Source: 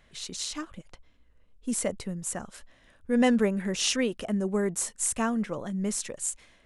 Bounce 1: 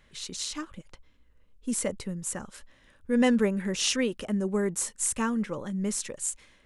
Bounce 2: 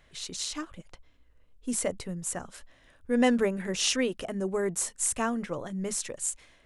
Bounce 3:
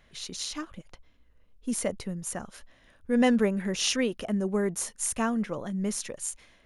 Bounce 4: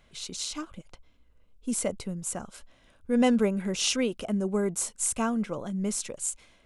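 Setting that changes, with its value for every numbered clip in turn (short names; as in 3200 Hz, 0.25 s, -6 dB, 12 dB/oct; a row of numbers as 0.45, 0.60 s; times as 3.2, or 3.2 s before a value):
notch, frequency: 690, 210, 7800, 1800 Hz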